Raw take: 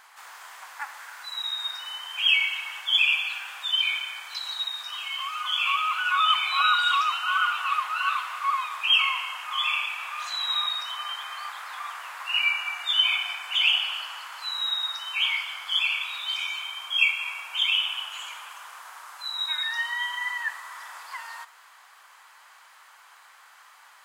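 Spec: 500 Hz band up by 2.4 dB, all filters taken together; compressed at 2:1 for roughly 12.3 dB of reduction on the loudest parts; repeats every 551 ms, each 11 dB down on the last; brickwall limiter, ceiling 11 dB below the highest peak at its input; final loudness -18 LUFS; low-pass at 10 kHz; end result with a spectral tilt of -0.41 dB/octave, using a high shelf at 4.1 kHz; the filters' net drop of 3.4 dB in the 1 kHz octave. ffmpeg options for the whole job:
-af "lowpass=10000,equalizer=f=500:t=o:g=6.5,equalizer=f=1000:t=o:g=-6,highshelf=f=4100:g=5.5,acompressor=threshold=0.0126:ratio=2,alimiter=level_in=1.68:limit=0.0631:level=0:latency=1,volume=0.596,aecho=1:1:551|1102|1653:0.282|0.0789|0.0221,volume=7.08"

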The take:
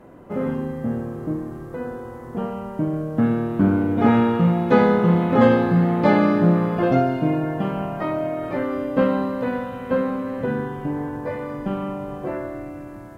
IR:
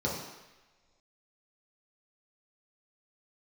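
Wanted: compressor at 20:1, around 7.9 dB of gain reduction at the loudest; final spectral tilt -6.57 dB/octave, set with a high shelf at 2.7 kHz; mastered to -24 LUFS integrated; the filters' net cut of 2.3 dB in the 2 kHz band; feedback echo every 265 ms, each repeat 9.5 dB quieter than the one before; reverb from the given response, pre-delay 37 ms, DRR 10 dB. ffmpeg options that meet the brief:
-filter_complex "[0:a]equalizer=f=2000:t=o:g=-6,highshelf=f=2700:g=7.5,acompressor=threshold=0.126:ratio=20,aecho=1:1:265|530|795|1060:0.335|0.111|0.0365|0.012,asplit=2[s0][s1];[1:a]atrim=start_sample=2205,adelay=37[s2];[s1][s2]afir=irnorm=-1:irlink=0,volume=0.126[s3];[s0][s3]amix=inputs=2:normalize=0,volume=0.944"

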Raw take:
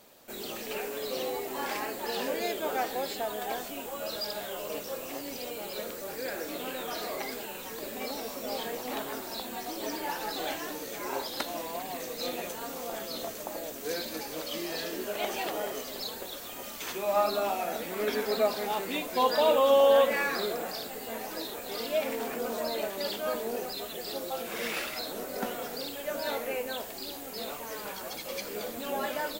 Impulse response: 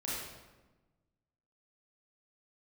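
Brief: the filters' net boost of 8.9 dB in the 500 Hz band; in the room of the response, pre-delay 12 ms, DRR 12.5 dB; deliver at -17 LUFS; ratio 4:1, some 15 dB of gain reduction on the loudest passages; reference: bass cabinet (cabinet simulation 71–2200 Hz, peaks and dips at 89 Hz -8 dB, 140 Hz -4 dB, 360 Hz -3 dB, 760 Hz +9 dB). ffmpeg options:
-filter_complex "[0:a]equalizer=f=500:t=o:g=9,acompressor=threshold=0.0355:ratio=4,asplit=2[s0][s1];[1:a]atrim=start_sample=2205,adelay=12[s2];[s1][s2]afir=irnorm=-1:irlink=0,volume=0.158[s3];[s0][s3]amix=inputs=2:normalize=0,highpass=f=71:w=0.5412,highpass=f=71:w=1.3066,equalizer=f=89:t=q:w=4:g=-8,equalizer=f=140:t=q:w=4:g=-4,equalizer=f=360:t=q:w=4:g=-3,equalizer=f=760:t=q:w=4:g=9,lowpass=f=2200:w=0.5412,lowpass=f=2200:w=1.3066,volume=5.31"

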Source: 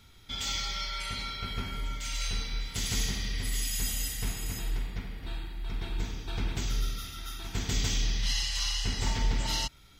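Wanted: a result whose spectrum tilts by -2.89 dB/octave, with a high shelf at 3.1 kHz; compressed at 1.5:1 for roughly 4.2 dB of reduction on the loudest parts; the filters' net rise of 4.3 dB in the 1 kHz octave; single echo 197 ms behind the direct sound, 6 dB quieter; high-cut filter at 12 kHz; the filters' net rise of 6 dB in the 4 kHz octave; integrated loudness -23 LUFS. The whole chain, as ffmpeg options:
-af "lowpass=12000,equalizer=f=1000:t=o:g=5,highshelf=f=3100:g=3,equalizer=f=4000:t=o:g=5,acompressor=threshold=0.02:ratio=1.5,aecho=1:1:197:0.501,volume=2.66"

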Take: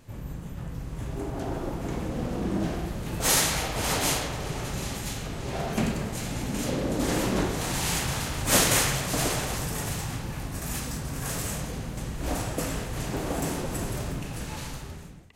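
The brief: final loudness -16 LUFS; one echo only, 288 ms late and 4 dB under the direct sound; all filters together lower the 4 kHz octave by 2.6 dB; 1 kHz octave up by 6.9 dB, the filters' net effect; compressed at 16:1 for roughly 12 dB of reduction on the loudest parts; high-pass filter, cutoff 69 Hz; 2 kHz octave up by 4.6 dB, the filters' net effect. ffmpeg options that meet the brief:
-af "highpass=69,equalizer=f=1000:t=o:g=8,equalizer=f=2000:t=o:g=4.5,equalizer=f=4000:t=o:g=-5.5,acompressor=threshold=0.0501:ratio=16,aecho=1:1:288:0.631,volume=5.01"

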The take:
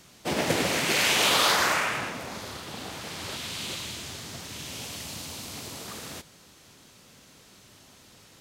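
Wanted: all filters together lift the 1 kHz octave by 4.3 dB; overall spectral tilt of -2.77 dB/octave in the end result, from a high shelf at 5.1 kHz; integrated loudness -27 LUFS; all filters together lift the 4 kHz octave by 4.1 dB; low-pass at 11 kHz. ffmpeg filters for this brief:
-af "lowpass=11000,equalizer=f=1000:t=o:g=5,equalizer=f=4000:t=o:g=3,highshelf=f=5100:g=4.5,volume=0.708"

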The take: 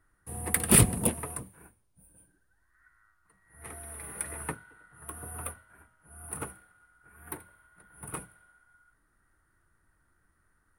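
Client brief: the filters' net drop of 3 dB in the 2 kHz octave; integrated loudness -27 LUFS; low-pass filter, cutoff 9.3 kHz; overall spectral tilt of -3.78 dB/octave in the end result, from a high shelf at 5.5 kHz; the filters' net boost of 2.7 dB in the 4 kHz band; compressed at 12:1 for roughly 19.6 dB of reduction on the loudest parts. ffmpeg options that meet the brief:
-af "lowpass=9300,equalizer=f=2000:t=o:g=-5.5,equalizer=f=4000:t=o:g=3.5,highshelf=f=5500:g=5.5,acompressor=threshold=0.02:ratio=12,volume=5.01"

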